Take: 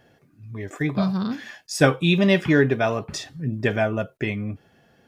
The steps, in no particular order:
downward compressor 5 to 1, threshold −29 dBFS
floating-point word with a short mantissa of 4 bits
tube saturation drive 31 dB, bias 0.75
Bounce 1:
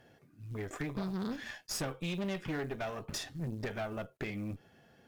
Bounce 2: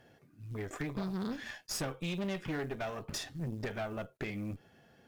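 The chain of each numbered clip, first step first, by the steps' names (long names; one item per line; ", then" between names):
downward compressor, then floating-point word with a short mantissa, then tube saturation
floating-point word with a short mantissa, then downward compressor, then tube saturation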